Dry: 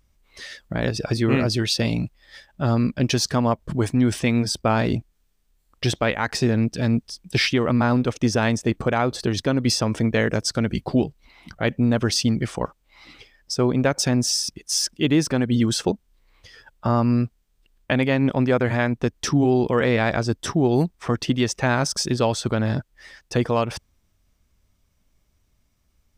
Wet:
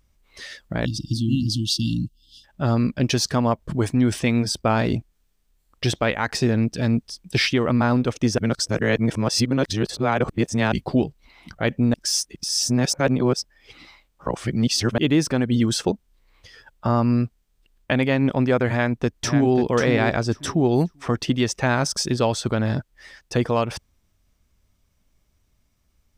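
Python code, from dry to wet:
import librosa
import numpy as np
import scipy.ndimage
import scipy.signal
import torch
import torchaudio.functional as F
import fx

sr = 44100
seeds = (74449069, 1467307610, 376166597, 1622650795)

y = fx.spec_erase(x, sr, start_s=0.85, length_s=1.59, low_hz=340.0, high_hz=2700.0)
y = fx.echo_throw(y, sr, start_s=18.69, length_s=0.86, ms=540, feedback_pct=20, wet_db=-8.0)
y = fx.edit(y, sr, fx.reverse_span(start_s=8.38, length_s=2.34),
    fx.reverse_span(start_s=11.94, length_s=3.04), tone=tone)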